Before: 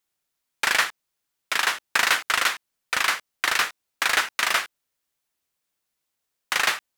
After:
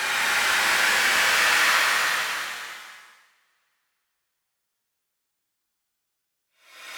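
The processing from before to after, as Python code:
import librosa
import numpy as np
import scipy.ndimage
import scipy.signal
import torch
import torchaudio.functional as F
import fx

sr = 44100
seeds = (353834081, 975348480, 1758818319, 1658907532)

y = fx.paulstretch(x, sr, seeds[0], factor=8.2, window_s=0.25, from_s=0.6)
y = fx.rev_double_slope(y, sr, seeds[1], early_s=0.96, late_s=3.0, knee_db=-20, drr_db=8.5)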